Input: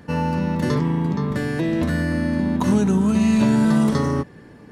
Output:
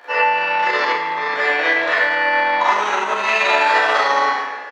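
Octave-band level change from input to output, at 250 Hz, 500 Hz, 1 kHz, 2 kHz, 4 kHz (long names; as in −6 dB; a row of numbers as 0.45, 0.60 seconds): −19.0, +4.5, +14.5, +17.0, +12.5 decibels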